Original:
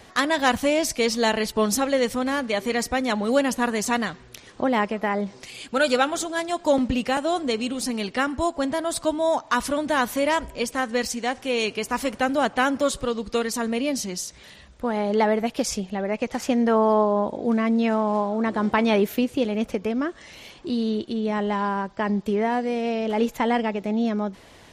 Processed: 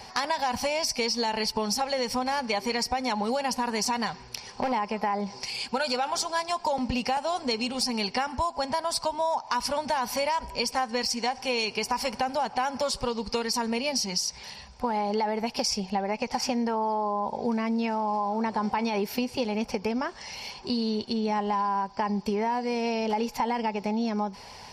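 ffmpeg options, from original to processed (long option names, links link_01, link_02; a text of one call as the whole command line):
ffmpeg -i in.wav -filter_complex "[0:a]asettb=1/sr,asplit=3[link_01][link_02][link_03];[link_01]atrim=end=4.064[link_04];[link_02]atrim=start=4.06:end=4.72,asetpts=PTS-STARTPTS,afade=type=in:duration=0.004:curve=qsin,afade=type=out:start_time=0.656:duration=0.004:curve=qsin,volume=20.5dB,asoftclip=hard,volume=-20.5dB[link_05];[link_03]atrim=start=4.716[link_06];[link_04][link_05]acrossfade=duration=0.004:curve1=hsin:curve2=qsin[link_07];[link_07][link_06]acrossfade=duration=0.004:curve1=qsin:curve2=hsin,superequalizer=6b=0.282:9b=3.16:12b=1.58:14b=3.98,alimiter=limit=-11.5dB:level=0:latency=1,acompressor=threshold=-24dB:ratio=6" out.wav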